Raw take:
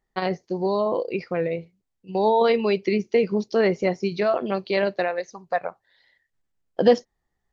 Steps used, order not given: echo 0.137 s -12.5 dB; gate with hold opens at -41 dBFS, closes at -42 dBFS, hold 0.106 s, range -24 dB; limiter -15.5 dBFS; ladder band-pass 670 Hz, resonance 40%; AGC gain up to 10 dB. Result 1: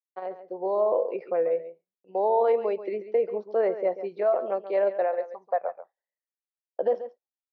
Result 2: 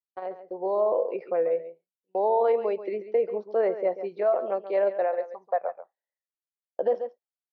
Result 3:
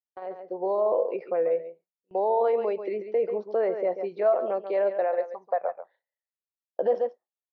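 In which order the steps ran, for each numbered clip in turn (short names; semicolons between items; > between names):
AGC > gate with hold > ladder band-pass > limiter > echo; AGC > ladder band-pass > gate with hold > echo > limiter; echo > limiter > ladder band-pass > AGC > gate with hold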